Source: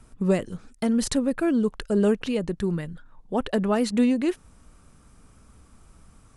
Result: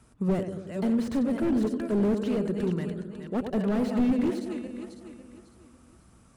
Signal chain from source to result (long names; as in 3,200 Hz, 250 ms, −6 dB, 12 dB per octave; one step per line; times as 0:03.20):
feedback delay that plays each chunk backwards 275 ms, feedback 53%, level −10 dB
high-pass filter 62 Hz
on a send: feedback echo with a low-pass in the loop 93 ms, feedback 69%, low-pass 810 Hz, level −9 dB
on the sum: slew-rate limiting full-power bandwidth 37 Hz
level −3 dB